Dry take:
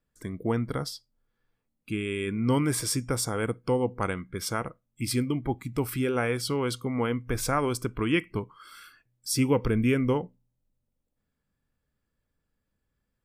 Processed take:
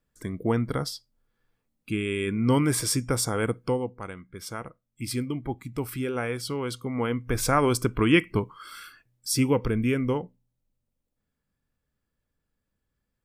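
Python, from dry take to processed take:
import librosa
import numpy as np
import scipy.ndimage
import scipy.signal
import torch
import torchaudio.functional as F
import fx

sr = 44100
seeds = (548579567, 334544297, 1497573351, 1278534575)

y = fx.gain(x, sr, db=fx.line((3.63, 2.5), (4.0, -9.0), (5.07, -2.5), (6.7, -2.5), (7.73, 5.5), (8.77, 5.5), (9.77, -1.0)))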